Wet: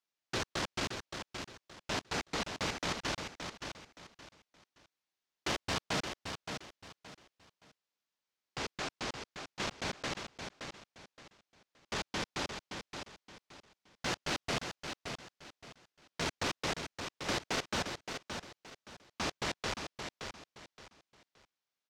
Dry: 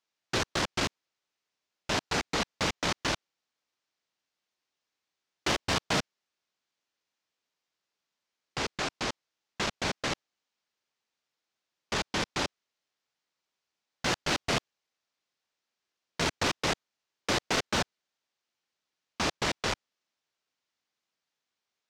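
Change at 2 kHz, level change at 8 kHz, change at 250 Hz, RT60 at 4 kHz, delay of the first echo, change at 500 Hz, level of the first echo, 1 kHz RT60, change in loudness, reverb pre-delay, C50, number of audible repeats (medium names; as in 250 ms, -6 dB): -5.5 dB, -5.5 dB, -5.5 dB, no reverb, 571 ms, -5.5 dB, -7.0 dB, no reverb, -7.5 dB, no reverb, no reverb, 3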